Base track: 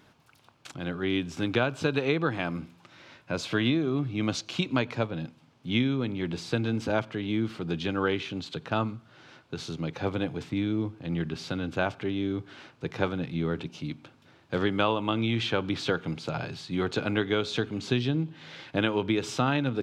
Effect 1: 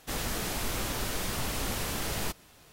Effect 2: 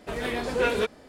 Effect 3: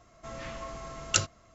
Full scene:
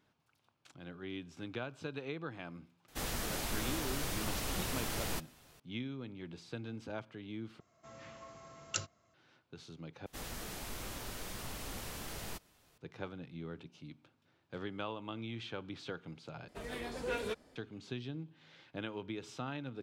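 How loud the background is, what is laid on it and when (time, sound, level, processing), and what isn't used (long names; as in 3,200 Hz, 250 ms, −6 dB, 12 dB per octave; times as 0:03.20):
base track −15.5 dB
0:02.88: mix in 1 −5 dB
0:07.60: overwrite with 3 −11.5 dB + high-pass filter 80 Hz 24 dB per octave
0:10.06: overwrite with 1 −11 dB
0:16.48: overwrite with 2 −13 dB + bass and treble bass +2 dB, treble +4 dB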